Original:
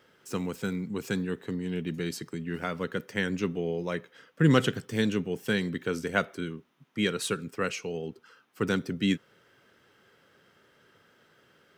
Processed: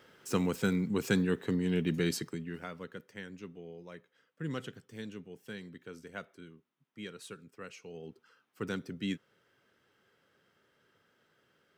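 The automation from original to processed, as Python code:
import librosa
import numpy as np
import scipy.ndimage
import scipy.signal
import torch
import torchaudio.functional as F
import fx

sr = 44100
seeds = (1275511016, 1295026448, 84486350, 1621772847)

y = fx.gain(x, sr, db=fx.line((2.16, 2.0), (2.61, -9.5), (3.3, -16.5), (7.69, -16.5), (8.1, -9.0)))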